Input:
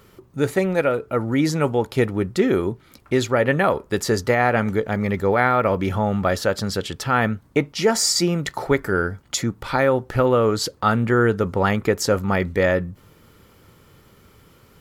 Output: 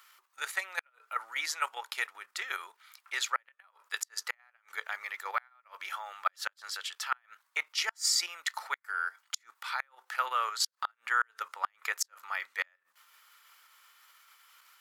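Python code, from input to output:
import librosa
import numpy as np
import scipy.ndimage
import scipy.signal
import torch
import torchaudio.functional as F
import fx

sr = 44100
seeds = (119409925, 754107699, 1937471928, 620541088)

y = fx.level_steps(x, sr, step_db=9)
y = scipy.signal.sosfilt(scipy.signal.butter(4, 1100.0, 'highpass', fs=sr, output='sos'), y)
y = fx.gate_flip(y, sr, shuts_db=-16.0, range_db=-38)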